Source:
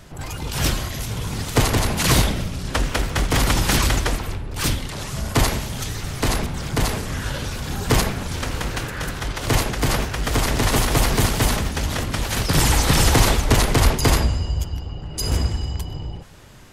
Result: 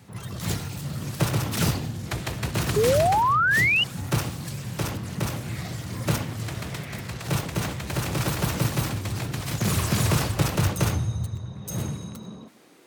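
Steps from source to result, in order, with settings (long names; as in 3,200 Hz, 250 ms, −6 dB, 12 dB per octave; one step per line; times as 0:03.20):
change of speed 1.3×
sound drawn into the spectrogram rise, 0:02.76–0:03.84, 400–3,000 Hz −12 dBFS
high-pass filter sweep 110 Hz → 940 Hz, 0:11.49–0:14.00
level −8.5 dB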